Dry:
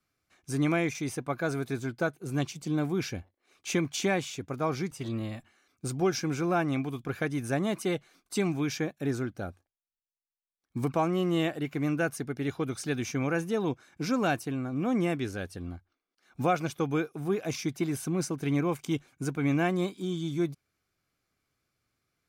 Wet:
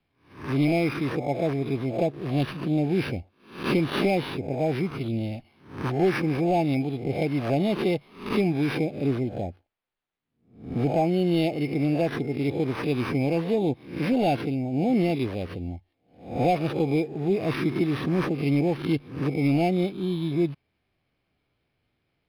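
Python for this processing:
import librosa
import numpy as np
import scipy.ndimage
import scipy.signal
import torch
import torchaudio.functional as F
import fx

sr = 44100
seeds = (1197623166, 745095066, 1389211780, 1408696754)

y = fx.spec_swells(x, sr, rise_s=0.47)
y = np.clip(y, -10.0 ** (-19.5 / 20.0), 10.0 ** (-19.5 / 20.0))
y = scipy.signal.sosfilt(scipy.signal.cheby1(5, 1.0, [860.0, 2100.0], 'bandstop', fs=sr, output='sos'), y)
y = np.interp(np.arange(len(y)), np.arange(len(y))[::6], y[::6])
y = F.gain(torch.from_numpy(y), 5.5).numpy()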